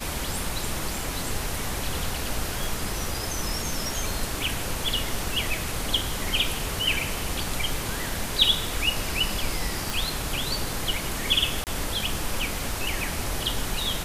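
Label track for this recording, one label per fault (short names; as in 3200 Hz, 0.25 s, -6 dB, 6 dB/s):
2.640000	2.640000	pop
9.900000	9.900000	pop
11.640000	11.670000	gap 28 ms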